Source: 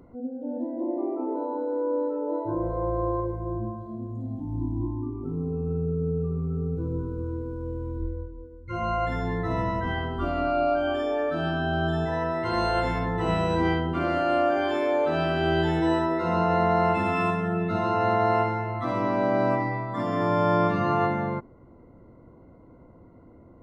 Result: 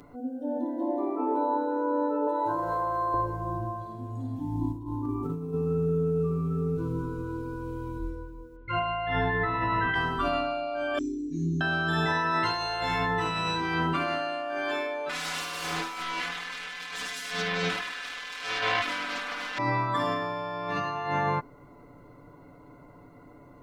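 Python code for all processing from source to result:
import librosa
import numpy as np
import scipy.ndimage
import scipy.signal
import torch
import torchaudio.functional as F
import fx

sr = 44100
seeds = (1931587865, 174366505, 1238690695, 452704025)

y = fx.chain(x, sr, fx.highpass(hz=57.0, slope=12),
    fx.low_shelf(hz=480.0, db=-12.0),
    fx.env_flatten(amount_pct=100), at=(2.27, 3.14))
y = fx.chain(y, sr, fx.high_shelf(hz=6700.0, db=5.0),
    fx.over_compress(threshold_db=-32.0, ratio=-0.5), at=(4.72, 5.54))
y = fx.chain(y, sr, fx.lowpass(hz=2700.0, slope=24),
    fx.high_shelf(hz=2100.0, db=7.0),
    fx.room_flutter(wall_m=9.3, rt60_s=0.38), at=(8.56, 9.94))
y = fx.chain(y, sr, fx.brickwall_bandstop(low_hz=400.0, high_hz=5600.0),
    fx.doubler(ms=23.0, db=-5.5),
    fx.resample_bad(factor=3, down='none', up='filtered'), at=(10.98, 11.61))
y = fx.chain(y, sr, fx.self_delay(depth_ms=0.97),
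    fx.comb(ms=4.0, depth=1.0), at=(15.09, 19.58))
y = fx.tilt_shelf(y, sr, db=-8.0, hz=1100.0)
y = y + 0.7 * np.pad(y, (int(6.9 * sr / 1000.0), 0))[:len(y)]
y = fx.over_compress(y, sr, threshold_db=-30.0, ratio=-1.0)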